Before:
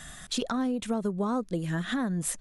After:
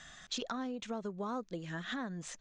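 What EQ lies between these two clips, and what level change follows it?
elliptic low-pass 6.7 kHz, stop band 80 dB; bass shelf 320 Hz -8.5 dB; -5.0 dB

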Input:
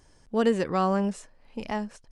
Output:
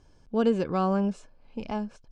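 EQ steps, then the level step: Butterworth band-stop 1.9 kHz, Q 6; low-pass 5.8 kHz 12 dB/octave; bass shelf 460 Hz +5 dB; -3.5 dB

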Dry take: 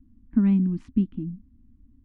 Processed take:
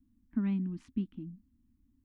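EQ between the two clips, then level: tilt EQ +2 dB/octave; -6.5 dB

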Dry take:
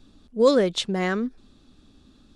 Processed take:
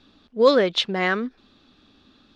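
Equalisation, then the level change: distance through air 290 m; tilt EQ +3.5 dB/octave; +6.0 dB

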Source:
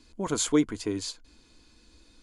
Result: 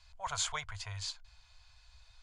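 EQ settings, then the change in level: elliptic band-stop 110–700 Hz, stop band 50 dB; distance through air 77 m; 0.0 dB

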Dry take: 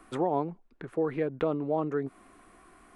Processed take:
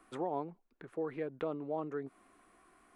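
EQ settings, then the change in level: bass shelf 170 Hz -7 dB; -7.5 dB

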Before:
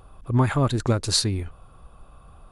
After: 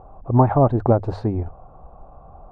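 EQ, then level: resonant low-pass 760 Hz, resonance Q 3.6; hum notches 50/100 Hz; +3.5 dB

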